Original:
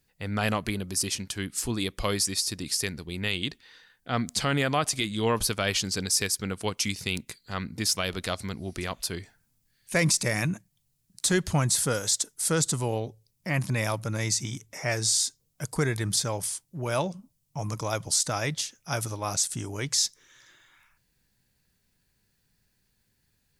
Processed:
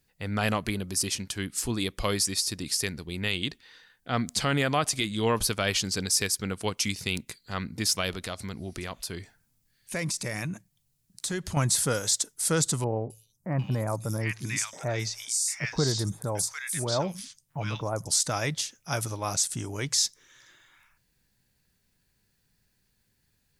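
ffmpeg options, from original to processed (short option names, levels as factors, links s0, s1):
-filter_complex "[0:a]asettb=1/sr,asplit=3[s0][s1][s2];[s0]atrim=end=8.144[s3];[s1]atrim=start=8.14:end=11.57,asetpts=PTS-STARTPTS,afade=t=in:d=0.004:c=qsin,afade=t=out:st=3.426:d=0.004:c=qsin,acompressor=threshold=0.0224:ratio=2:attack=3.2:release=140:knee=1:detection=peak[s4];[s2]atrim=start=11.566[s5];[s3][s4]acrossfade=d=0.004:c1=hsin:c2=qsin[s6];[s6][s5]acrossfade=d=0.004:c1=qsin:c2=hsin,asettb=1/sr,asplit=3[s7][s8][s9];[s7]atrim=end=12.844[s10];[s8]atrim=start=12.84:end=18.08,asetpts=PTS-STARTPTS,afade=t=in:d=0.004:c=qsin,afade=t=out:st=5.236:d=0.004:c=qsin,acrossover=split=1400|5500[s11][s12][s13];[s13]adelay=260[s14];[s12]adelay=750[s15];[s11][s15][s14]amix=inputs=3:normalize=0,atrim=end_sample=231084[s16];[s9]atrim=start=18.076[s17];[s10][s16]acrossfade=d=0.004:c1=hsin:c2=qsin[s18];[s18][s17]acrossfade=d=0.004:c1=qsin:c2=hsin"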